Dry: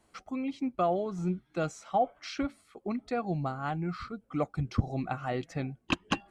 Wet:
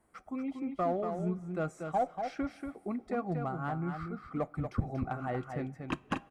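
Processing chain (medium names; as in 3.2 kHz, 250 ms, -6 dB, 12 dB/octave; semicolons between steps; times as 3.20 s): high-order bell 4.2 kHz -10 dB; band-stop 4.2 kHz, Q 17; in parallel at -3 dB: one-sided clip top -26 dBFS; on the sum: delay 236 ms -6.5 dB; two-slope reverb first 0.21 s, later 4.5 s, from -21 dB, DRR 16.5 dB; trim -7.5 dB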